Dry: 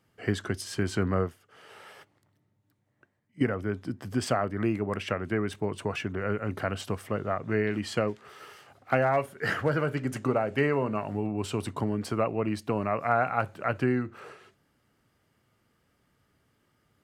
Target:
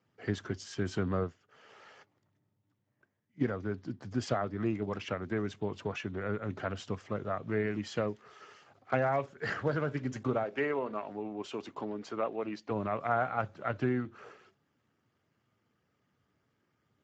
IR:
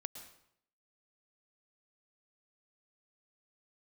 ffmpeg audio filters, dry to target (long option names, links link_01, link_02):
-filter_complex "[0:a]asplit=3[link_01][link_02][link_03];[link_01]afade=type=out:start_time=10.43:duration=0.02[link_04];[link_02]highpass=300,lowpass=6100,afade=type=in:start_time=10.43:duration=0.02,afade=type=out:start_time=12.69:duration=0.02[link_05];[link_03]afade=type=in:start_time=12.69:duration=0.02[link_06];[link_04][link_05][link_06]amix=inputs=3:normalize=0,volume=-5dB" -ar 16000 -c:a libspeex -b:a 13k